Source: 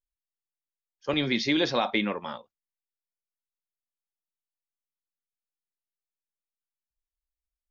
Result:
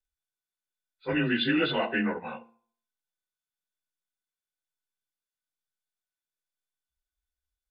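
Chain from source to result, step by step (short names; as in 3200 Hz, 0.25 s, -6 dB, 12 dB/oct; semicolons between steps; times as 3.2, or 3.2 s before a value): inharmonic rescaling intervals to 90%; low shelf 190 Hz +5 dB; de-hum 114.9 Hz, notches 10; small resonant body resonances 1500/3500 Hz, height 17 dB, ringing for 70 ms; tape echo 70 ms, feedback 37%, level -20.5 dB, low-pass 4400 Hz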